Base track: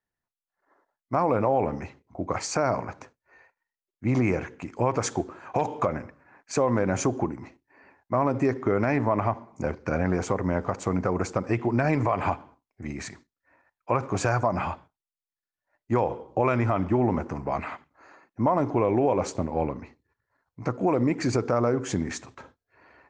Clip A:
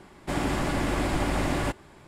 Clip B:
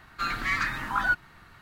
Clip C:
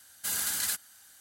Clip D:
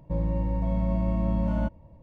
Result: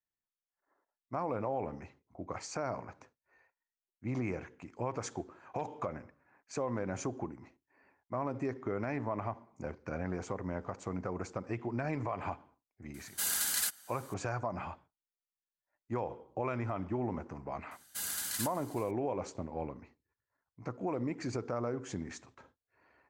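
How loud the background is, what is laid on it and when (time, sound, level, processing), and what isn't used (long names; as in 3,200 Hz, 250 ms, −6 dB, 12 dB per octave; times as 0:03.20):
base track −12 dB
0:12.94: mix in C −1.5 dB + parametric band 110 Hz −7.5 dB 1.2 octaves
0:17.71: mix in C −6.5 dB + single-tap delay 372 ms −21 dB
not used: A, B, D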